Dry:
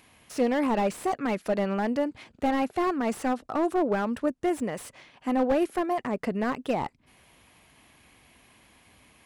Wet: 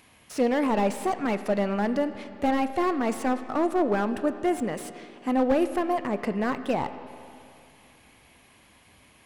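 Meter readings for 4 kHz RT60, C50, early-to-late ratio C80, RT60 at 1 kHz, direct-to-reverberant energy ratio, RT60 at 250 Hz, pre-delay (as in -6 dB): 2.5 s, 11.5 dB, 12.0 dB, 2.6 s, 10.5 dB, 2.6 s, 13 ms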